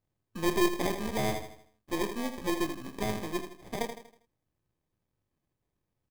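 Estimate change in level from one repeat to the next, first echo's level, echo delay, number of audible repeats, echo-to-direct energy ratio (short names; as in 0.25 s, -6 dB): -7.5 dB, -8.5 dB, 80 ms, 4, -7.5 dB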